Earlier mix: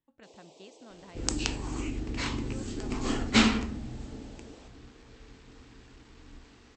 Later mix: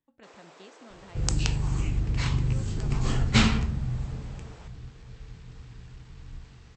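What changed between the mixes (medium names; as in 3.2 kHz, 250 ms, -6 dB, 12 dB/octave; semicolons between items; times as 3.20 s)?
first sound: remove Butterworth band-stop 1.5 kHz, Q 0.67; second sound: add resonant low shelf 200 Hz +8.5 dB, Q 3; reverb: on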